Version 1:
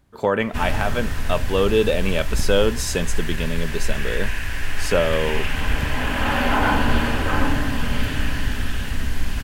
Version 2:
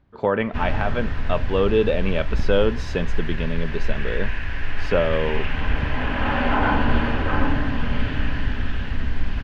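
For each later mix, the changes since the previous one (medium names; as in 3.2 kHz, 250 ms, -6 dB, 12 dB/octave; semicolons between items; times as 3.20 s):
master: add distance through air 260 m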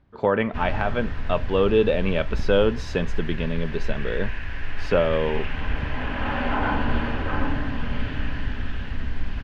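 background -4.0 dB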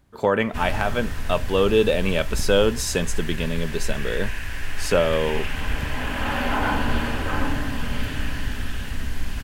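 master: remove distance through air 260 m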